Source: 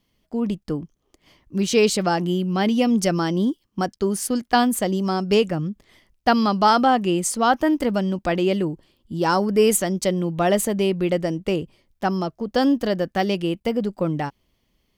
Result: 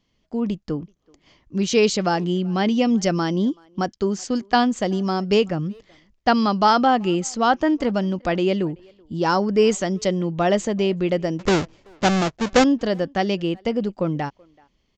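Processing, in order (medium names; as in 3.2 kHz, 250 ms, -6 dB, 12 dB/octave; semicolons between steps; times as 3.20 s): 11.39–12.64 s: square wave that keeps the level; resampled via 16 kHz; speakerphone echo 380 ms, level -27 dB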